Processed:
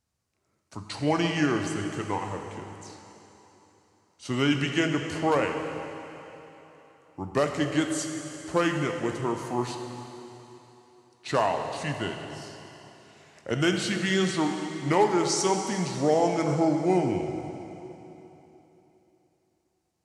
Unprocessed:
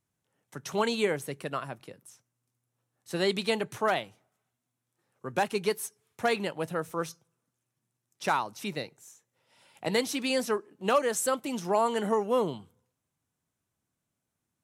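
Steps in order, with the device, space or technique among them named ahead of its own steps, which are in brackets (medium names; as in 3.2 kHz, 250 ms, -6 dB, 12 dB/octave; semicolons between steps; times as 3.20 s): slowed and reverbed (tape speed -27%; reverberation RT60 3.4 s, pre-delay 9 ms, DRR 4 dB); trim +2 dB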